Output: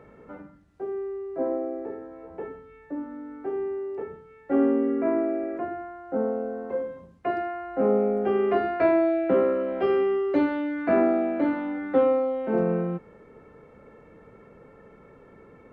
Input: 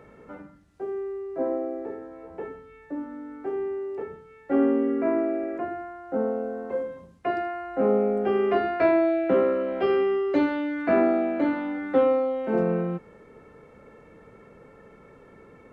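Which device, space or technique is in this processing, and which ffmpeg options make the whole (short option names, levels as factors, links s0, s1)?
behind a face mask: -af "highshelf=f=3200:g=-8"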